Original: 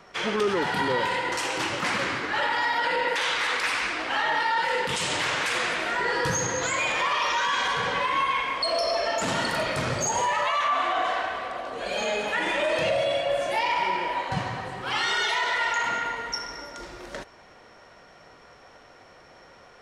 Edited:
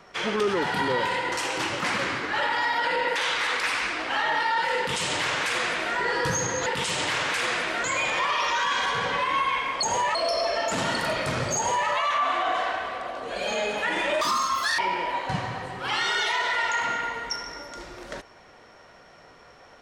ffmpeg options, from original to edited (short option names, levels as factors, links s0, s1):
-filter_complex "[0:a]asplit=7[s0][s1][s2][s3][s4][s5][s6];[s0]atrim=end=6.662[s7];[s1]atrim=start=4.778:end=5.962[s8];[s2]atrim=start=6.658:end=8.652[s9];[s3]atrim=start=10.068:end=10.392[s10];[s4]atrim=start=8.648:end=12.714[s11];[s5]atrim=start=12.71:end=13.81,asetpts=PTS-STARTPTS,asetrate=84231,aresample=44100[s12];[s6]atrim=start=13.806[s13];[s7][s8]acrossfade=d=0.004:c1=hsin:c2=hsin[s14];[s14][s9]acrossfade=d=0.004:c1=hsin:c2=hsin[s15];[s15][s10]acrossfade=d=0.004:c1=hsin:c2=hsin[s16];[s16][s11]acrossfade=d=0.004:c1=hsin:c2=hsin[s17];[s17][s12]acrossfade=d=0.004:c1=hsin:c2=hsin[s18];[s18][s13]acrossfade=d=0.004:c1=hsin:c2=hsin"